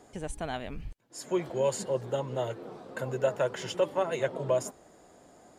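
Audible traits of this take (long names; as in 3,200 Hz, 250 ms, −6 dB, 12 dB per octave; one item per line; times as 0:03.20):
background noise floor −58 dBFS
spectral slope −5.0 dB per octave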